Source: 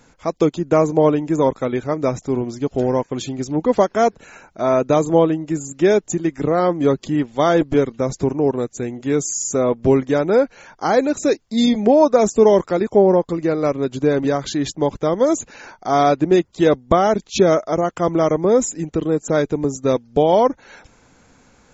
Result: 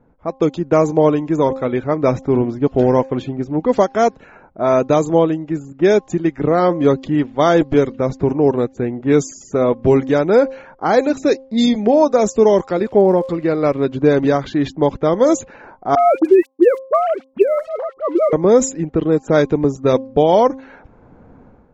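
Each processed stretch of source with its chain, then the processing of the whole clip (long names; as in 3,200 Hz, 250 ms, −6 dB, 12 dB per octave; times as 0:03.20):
0:12.71–0:13.85: notch filter 6,100 Hz, Q 5.2 + surface crackle 210 per second −39 dBFS + one half of a high-frequency compander encoder only
0:15.95–0:18.33: three sine waves on the formant tracks + centre clipping without the shift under −36.5 dBFS + all-pass dispersion highs, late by 44 ms, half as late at 1,500 Hz
whole clip: hum removal 265.6 Hz, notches 4; low-pass that shuts in the quiet parts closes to 760 Hz, open at −10.5 dBFS; automatic gain control; level −1 dB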